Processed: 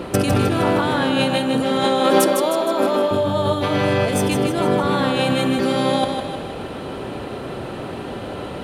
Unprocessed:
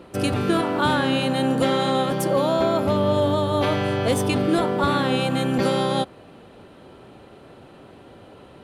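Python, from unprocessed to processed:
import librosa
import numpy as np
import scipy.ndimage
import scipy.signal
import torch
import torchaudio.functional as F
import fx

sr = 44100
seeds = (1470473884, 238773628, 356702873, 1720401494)

y = fx.highpass(x, sr, hz=250.0, slope=24, at=(1.84, 3.11))
y = fx.over_compress(y, sr, threshold_db=-28.0, ratio=-1.0)
y = fx.echo_feedback(y, sr, ms=155, feedback_pct=52, wet_db=-6.0)
y = y * 10.0 ** (8.5 / 20.0)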